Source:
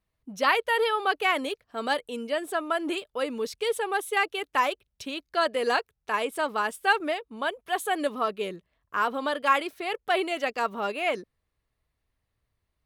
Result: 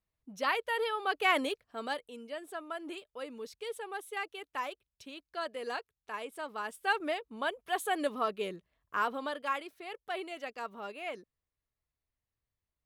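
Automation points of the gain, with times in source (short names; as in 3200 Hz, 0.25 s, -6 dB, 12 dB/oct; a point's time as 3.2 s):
1.02 s -8 dB
1.37 s -1 dB
2.14 s -12.5 dB
6.47 s -12.5 dB
7.15 s -4.5 dB
8.97 s -4.5 dB
9.61 s -12.5 dB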